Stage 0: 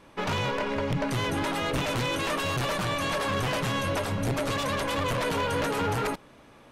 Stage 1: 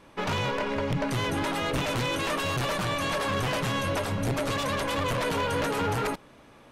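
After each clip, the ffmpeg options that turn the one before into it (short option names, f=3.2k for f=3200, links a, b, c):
-af anull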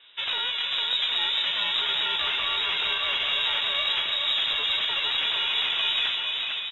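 -af "aecho=1:1:450|765|985.5|1140|1248:0.631|0.398|0.251|0.158|0.1,lowpass=f=3.3k:t=q:w=0.5098,lowpass=f=3.3k:t=q:w=0.6013,lowpass=f=3.3k:t=q:w=0.9,lowpass=f=3.3k:t=q:w=2.563,afreqshift=-3900,aeval=exprs='0.299*(cos(1*acos(clip(val(0)/0.299,-1,1)))-cos(1*PI/2))+0.00211*(cos(6*acos(clip(val(0)/0.299,-1,1)))-cos(6*PI/2))':c=same"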